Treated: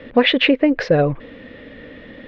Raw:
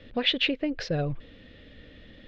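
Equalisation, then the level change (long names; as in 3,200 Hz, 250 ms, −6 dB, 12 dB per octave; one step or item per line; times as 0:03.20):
octave-band graphic EQ 125/250/500/1,000/2,000 Hz +4/+10/+10/+12/+10 dB
+1.0 dB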